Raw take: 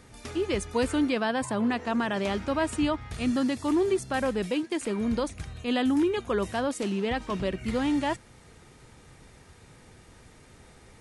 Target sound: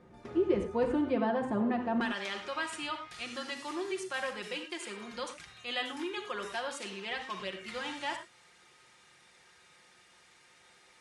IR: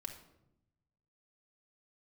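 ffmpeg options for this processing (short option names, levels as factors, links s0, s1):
-filter_complex "[0:a]asetnsamples=n=441:p=0,asendcmd='2.01 bandpass f 3200',bandpass=f=370:t=q:w=0.54:csg=0[s0];[1:a]atrim=start_sample=2205,atrim=end_sample=3528,asetrate=28224,aresample=44100[s1];[s0][s1]afir=irnorm=-1:irlink=0"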